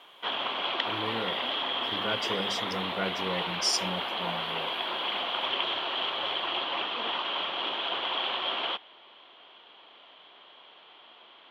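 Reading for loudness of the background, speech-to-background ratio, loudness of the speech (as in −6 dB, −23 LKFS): −30.0 LKFS, −3.5 dB, −33.5 LKFS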